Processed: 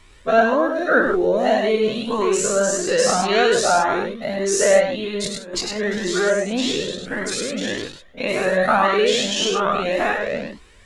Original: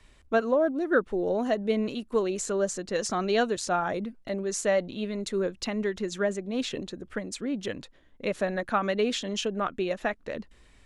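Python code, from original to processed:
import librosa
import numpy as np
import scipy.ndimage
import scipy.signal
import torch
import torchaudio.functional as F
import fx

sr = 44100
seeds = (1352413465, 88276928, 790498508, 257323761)

p1 = fx.spec_dilate(x, sr, span_ms=120)
p2 = fx.low_shelf(p1, sr, hz=130.0, db=-7.0)
p3 = fx.over_compress(p2, sr, threshold_db=-31.0, ratio=-0.5, at=(5.24, 5.76))
p4 = p3 + fx.echo_single(p3, sr, ms=102, db=-4.5, dry=0)
p5 = fx.comb_cascade(p4, sr, direction='rising', hz=1.8)
y = p5 * librosa.db_to_amplitude(8.5)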